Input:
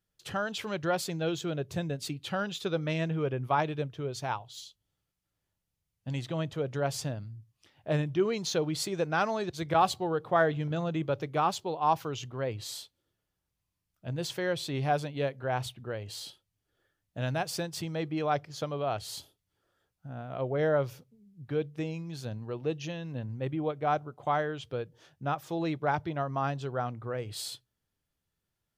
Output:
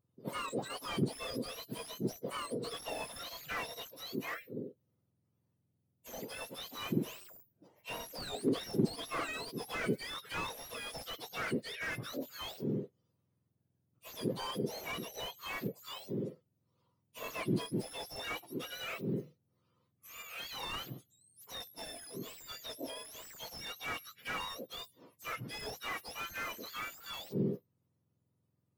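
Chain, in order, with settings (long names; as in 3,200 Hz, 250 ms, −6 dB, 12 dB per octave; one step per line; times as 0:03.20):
frequency axis turned over on the octave scale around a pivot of 1,300 Hz
slew-rate limiting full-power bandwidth 33 Hz
level −1.5 dB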